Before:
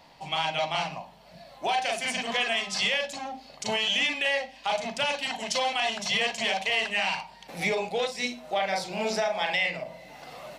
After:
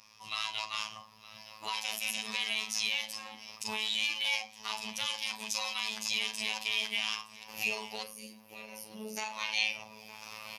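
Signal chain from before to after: recorder AGC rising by 5.5 dB/s; ripple EQ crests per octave 0.92, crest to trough 8 dB; robotiser 108 Hz; passive tone stack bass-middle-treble 5-5-5; in parallel at +1 dB: limiter -25 dBFS, peak gain reduction 9 dB; on the sum: formant shift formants +3 st; spectral gain 8.03–9.17, 630–8700 Hz -15 dB; on a send: feedback echo 0.916 s, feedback 34%, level -19 dB

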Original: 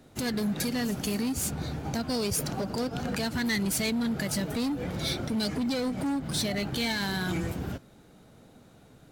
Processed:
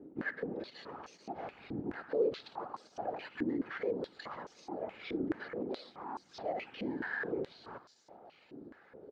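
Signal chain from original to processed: high shelf 2400 Hz -11 dB; comb 2.4 ms, depth 40%; reverse; compressor 6:1, threshold -38 dBFS, peak gain reduction 11 dB; reverse; whisperiser; sample-and-hold 5×; air absorption 200 m; on a send: thin delay 0.756 s, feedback 64%, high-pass 4500 Hz, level -10 dB; on the sum: stepped band-pass 4.7 Hz 300–6100 Hz; gain +14 dB

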